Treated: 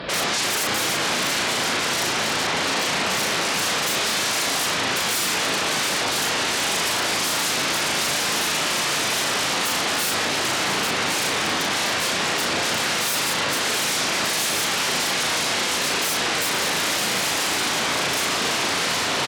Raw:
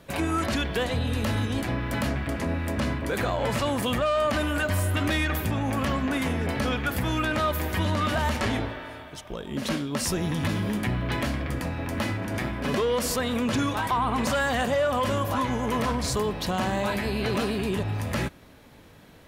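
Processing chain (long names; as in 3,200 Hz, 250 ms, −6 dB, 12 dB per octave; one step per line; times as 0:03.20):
sub-octave generator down 2 octaves, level −2 dB
downsampling to 11,025 Hz
on a send: feedback delay with all-pass diffusion 674 ms, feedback 71%, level −6 dB
on the sum: brickwall limiter −22 dBFS, peak gain reduction 11 dB
parametric band 200 Hz −5.5 dB 2.9 octaves
sine wavefolder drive 19 dB, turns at −21.5 dBFS
high-pass filter 140 Hz 12 dB per octave
double-tracking delay 37 ms −3 dB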